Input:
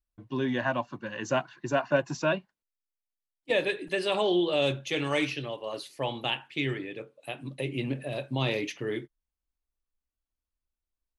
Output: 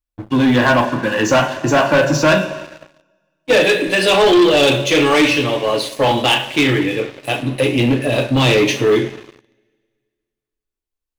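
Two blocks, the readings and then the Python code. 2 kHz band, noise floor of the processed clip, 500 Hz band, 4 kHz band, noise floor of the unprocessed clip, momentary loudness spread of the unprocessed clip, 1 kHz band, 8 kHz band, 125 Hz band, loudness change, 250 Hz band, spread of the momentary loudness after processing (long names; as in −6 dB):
+16.0 dB, −84 dBFS, +15.0 dB, +16.0 dB, below −85 dBFS, 11 LU, +16.0 dB, +19.5 dB, +15.0 dB, +15.5 dB, +16.5 dB, 8 LU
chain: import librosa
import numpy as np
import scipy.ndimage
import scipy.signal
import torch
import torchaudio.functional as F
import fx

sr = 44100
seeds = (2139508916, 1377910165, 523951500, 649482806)

y = fx.rev_double_slope(x, sr, seeds[0], early_s=0.34, late_s=2.0, knee_db=-18, drr_db=1.5)
y = fx.leveller(y, sr, passes=3)
y = y * librosa.db_to_amplitude(5.5)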